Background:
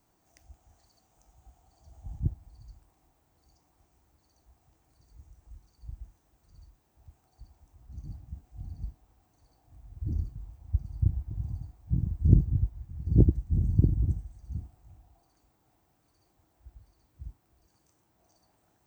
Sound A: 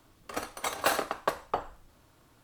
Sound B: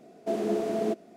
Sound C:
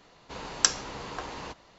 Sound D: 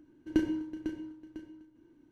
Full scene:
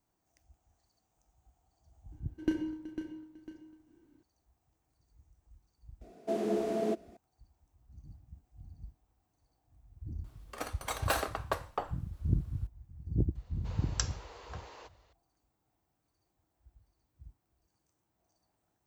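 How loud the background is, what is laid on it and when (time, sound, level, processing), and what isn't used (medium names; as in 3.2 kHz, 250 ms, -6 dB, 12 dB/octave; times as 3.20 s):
background -10 dB
2.12 s: add D -3.5 dB
6.01 s: add B -3.5 dB
10.24 s: add A -4.5 dB
13.35 s: add C -12 dB + resonant low shelf 280 Hz -14 dB, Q 1.5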